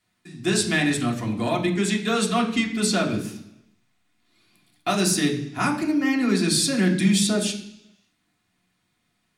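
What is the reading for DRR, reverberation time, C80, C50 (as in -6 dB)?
-3.0 dB, 0.70 s, 12.0 dB, 9.5 dB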